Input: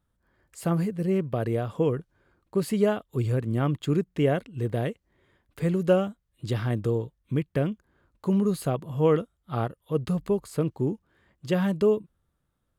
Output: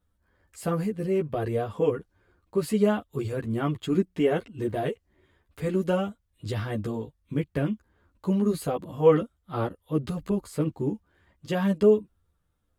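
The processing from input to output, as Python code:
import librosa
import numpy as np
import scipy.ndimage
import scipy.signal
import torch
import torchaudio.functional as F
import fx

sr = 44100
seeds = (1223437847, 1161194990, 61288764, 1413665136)

y = fx.chorus_voices(x, sr, voices=6, hz=0.45, base_ms=12, depth_ms=2.3, mix_pct=50)
y = y * librosa.db_to_amplitude(3.0)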